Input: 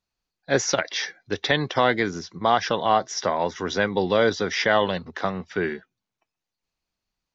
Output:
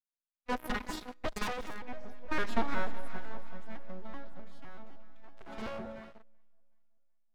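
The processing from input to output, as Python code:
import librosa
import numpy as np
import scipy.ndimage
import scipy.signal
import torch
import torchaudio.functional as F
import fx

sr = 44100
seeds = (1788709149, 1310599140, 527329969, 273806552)

p1 = fx.vocoder_arp(x, sr, chord='minor triad', root=55, every_ms=120)
p2 = fx.doppler_pass(p1, sr, speed_mps=20, closest_m=2.7, pass_at_s=2.54)
p3 = np.abs(p2)
p4 = p3 + fx.echo_alternate(p3, sr, ms=188, hz=890.0, feedback_pct=66, wet_db=-11.5, dry=0)
p5 = fx.rev_schroeder(p4, sr, rt60_s=2.8, comb_ms=28, drr_db=13.0)
p6 = fx.fuzz(p5, sr, gain_db=46.0, gate_db=-47.0)
p7 = p5 + F.gain(torch.from_numpy(p6), -9.5).numpy()
p8 = fx.high_shelf(p7, sr, hz=4700.0, db=-7.0)
y = F.gain(torch.from_numpy(p8), -2.5).numpy()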